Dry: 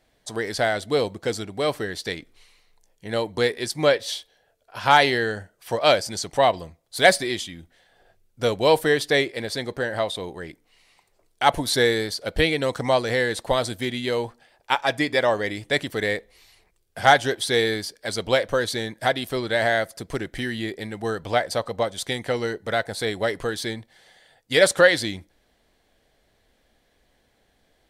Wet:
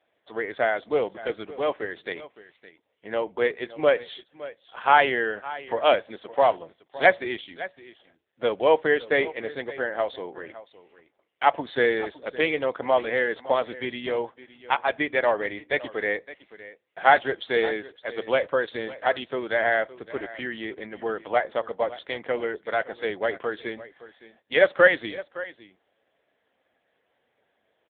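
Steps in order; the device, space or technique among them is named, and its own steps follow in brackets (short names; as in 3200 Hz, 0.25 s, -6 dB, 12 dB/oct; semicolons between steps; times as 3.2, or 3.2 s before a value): satellite phone (BPF 330–3200 Hz; echo 0.563 s -17 dB; AMR-NB 6.7 kbps 8000 Hz)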